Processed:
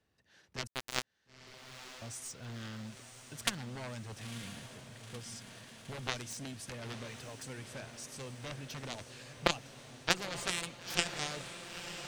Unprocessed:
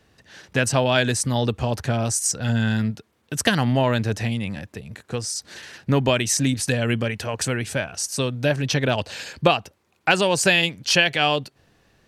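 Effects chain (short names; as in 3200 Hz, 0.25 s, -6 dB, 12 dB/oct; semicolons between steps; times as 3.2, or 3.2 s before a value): added harmonics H 3 -8 dB, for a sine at -3 dBFS; 0.67–2.02 sample gate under -23 dBFS; diffused feedback echo 0.96 s, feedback 72%, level -10 dB; gain -5 dB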